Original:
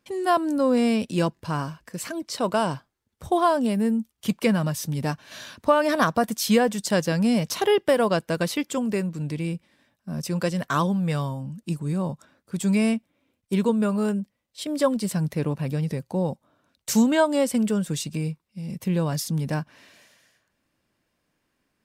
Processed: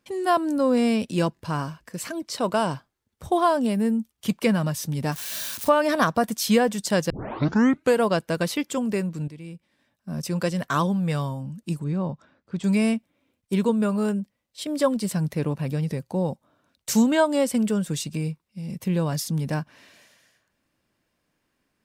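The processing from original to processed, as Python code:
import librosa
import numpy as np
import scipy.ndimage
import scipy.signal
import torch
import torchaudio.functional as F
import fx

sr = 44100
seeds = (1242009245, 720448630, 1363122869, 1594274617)

y = fx.crossing_spikes(x, sr, level_db=-24.5, at=(5.12, 5.69))
y = fx.air_absorb(y, sr, metres=150.0, at=(11.84, 12.64))
y = fx.edit(y, sr, fx.tape_start(start_s=7.1, length_s=0.92),
    fx.fade_in_from(start_s=9.28, length_s=0.83, curve='qua', floor_db=-12.0), tone=tone)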